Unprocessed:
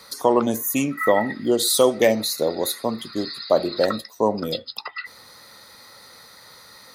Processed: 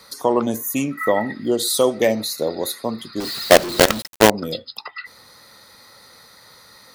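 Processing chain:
low-shelf EQ 260 Hz +2.5 dB
0:03.20–0:04.30: log-companded quantiser 2 bits
level −1 dB

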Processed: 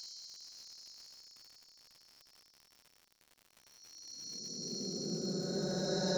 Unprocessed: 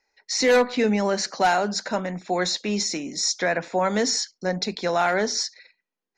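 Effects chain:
high shelf with overshoot 3,000 Hz +9.5 dB, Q 3
reversed playback
downward compressor 6 to 1, threshold −31 dBFS, peak gain reduction 21.5 dB
reversed playback
extreme stretch with random phases 47×, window 0.05 s, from 0:04.32
surface crackle 150 per second −53 dBFS
level +6.5 dB

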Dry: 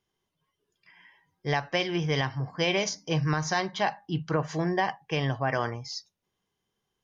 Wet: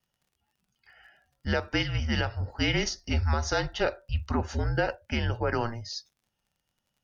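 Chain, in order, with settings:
frequency shifter −230 Hz
pitch vibrato 1.2 Hz 25 cents
surface crackle 49 per second −56 dBFS

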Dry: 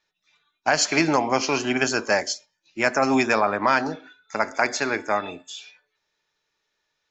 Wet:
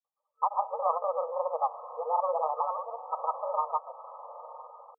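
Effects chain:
gliding playback speed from 130% → 155%
feedback delay with all-pass diffusion 920 ms, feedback 43%, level −14 dB
granular cloud, pitch spread up and down by 0 semitones
brick-wall band-pass 460–1,300 Hz
level −2.5 dB

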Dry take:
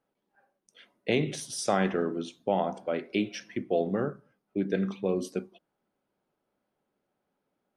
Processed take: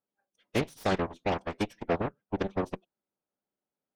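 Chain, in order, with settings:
harmonic generator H 5 −25 dB, 6 −20 dB, 7 −13 dB, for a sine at −12.5 dBFS
phase-vocoder stretch with locked phases 0.51×

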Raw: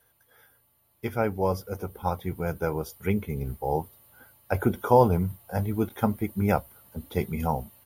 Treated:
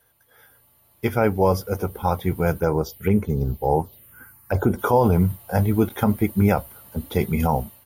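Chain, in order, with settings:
brickwall limiter −16 dBFS, peak gain reduction 9.5 dB
automatic gain control gain up to 6 dB
0:02.60–0:04.79: phaser swept by the level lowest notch 550 Hz, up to 4,800 Hz, full sweep at −16.5 dBFS
level +2.5 dB

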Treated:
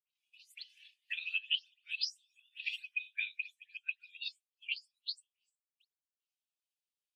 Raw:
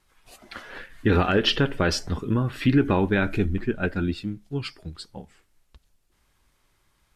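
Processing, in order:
every frequency bin delayed by itself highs late, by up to 182 ms
elliptic high-pass filter 2,600 Hz, stop band 70 dB
transient designer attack +10 dB, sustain −2 dB
downward compressor 12 to 1, threshold −32 dBFS, peak gain reduction 22.5 dB
every bin expanded away from the loudest bin 1.5 to 1

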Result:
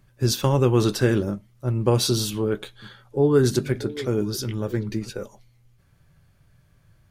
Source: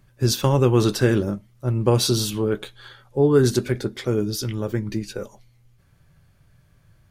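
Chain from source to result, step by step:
0:02.50–0:05.10: echo through a band-pass that steps 317 ms, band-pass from 150 Hz, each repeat 1.4 octaves, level −11 dB
level −1.5 dB

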